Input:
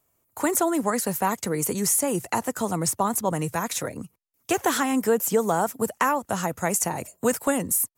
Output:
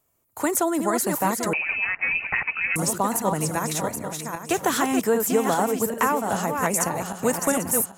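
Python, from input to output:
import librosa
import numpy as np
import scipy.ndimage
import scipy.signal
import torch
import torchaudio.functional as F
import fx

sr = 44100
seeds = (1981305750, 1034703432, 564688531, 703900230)

y = fx.reverse_delay_fb(x, sr, ms=396, feedback_pct=50, wet_db=-5.0)
y = fx.freq_invert(y, sr, carrier_hz=2800, at=(1.53, 2.76))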